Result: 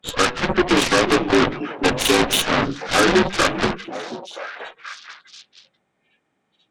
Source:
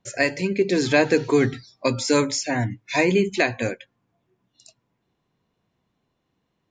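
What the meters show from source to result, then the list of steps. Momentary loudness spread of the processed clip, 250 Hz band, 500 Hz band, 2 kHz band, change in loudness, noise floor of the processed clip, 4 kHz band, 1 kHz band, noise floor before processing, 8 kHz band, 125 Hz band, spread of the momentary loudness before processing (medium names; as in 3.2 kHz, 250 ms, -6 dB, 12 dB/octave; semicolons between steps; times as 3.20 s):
17 LU, +2.5 dB, +1.5 dB, +4.5 dB, +3.5 dB, -71 dBFS, +10.0 dB, +8.5 dB, -75 dBFS, +5.0 dB, -1.0 dB, 7 LU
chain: frequency axis rescaled in octaves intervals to 81%; bass shelf 240 Hz -10 dB; de-hum 49.38 Hz, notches 4; peak limiter -16 dBFS, peak gain reduction 7 dB; Chebyshev shaper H 7 -11 dB, 8 -15 dB, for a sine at -16 dBFS; on a send: repeats whose band climbs or falls 486 ms, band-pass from 250 Hz, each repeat 1.4 oct, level -7 dB; on the sum: trim +8.5 dB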